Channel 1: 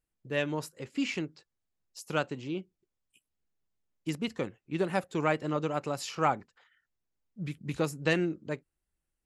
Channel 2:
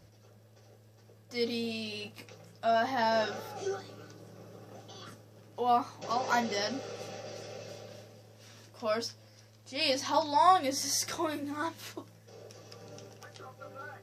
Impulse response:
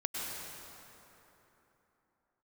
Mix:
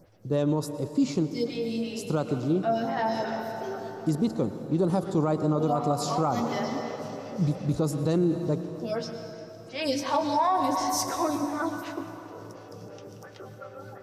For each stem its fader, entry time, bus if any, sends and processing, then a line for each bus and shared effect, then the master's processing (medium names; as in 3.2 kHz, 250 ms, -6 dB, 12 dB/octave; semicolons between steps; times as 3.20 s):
+3.0 dB, 0.00 s, send -13.5 dB, high-order bell 2.2 kHz -16 dB 1.2 oct
+0.5 dB, 0.00 s, send -6.5 dB, lamp-driven phase shifter 2.8 Hz; auto duck -6 dB, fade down 0.25 s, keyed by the first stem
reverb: on, RT60 3.5 s, pre-delay 93 ms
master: bass shelf 480 Hz +8 dB; peak limiter -16 dBFS, peak gain reduction 9.5 dB